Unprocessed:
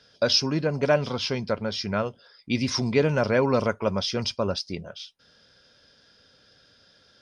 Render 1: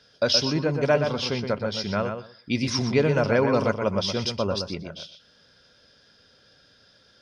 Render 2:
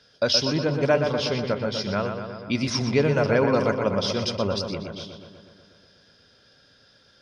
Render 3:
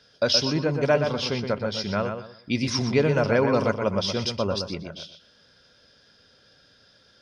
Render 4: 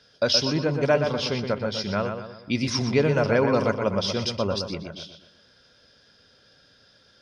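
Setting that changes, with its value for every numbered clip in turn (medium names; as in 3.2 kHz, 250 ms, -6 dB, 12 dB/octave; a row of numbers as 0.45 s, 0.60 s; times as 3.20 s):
filtered feedback delay, feedback: 17%, 69%, 28%, 45%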